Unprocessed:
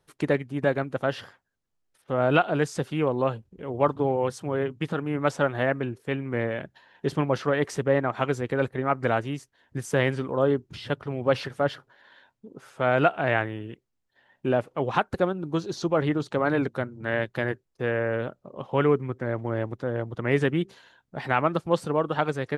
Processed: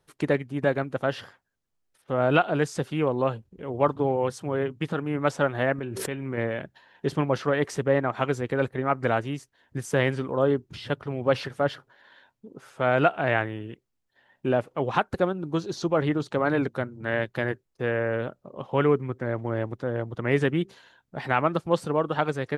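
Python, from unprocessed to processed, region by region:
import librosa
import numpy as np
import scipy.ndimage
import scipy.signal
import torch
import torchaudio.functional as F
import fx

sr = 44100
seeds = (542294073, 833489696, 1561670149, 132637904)

y = fx.chain(x, sr, fx.comb_fb(f0_hz=190.0, decay_s=0.21, harmonics='all', damping=0.0, mix_pct=50),
    fx.pre_swell(db_per_s=23.0), at=(5.78, 6.38))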